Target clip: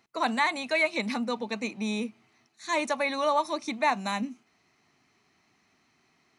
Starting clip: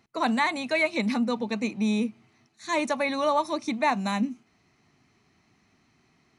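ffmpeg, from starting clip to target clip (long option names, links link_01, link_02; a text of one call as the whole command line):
ffmpeg -i in.wav -af "lowshelf=frequency=240:gain=-11.5" out.wav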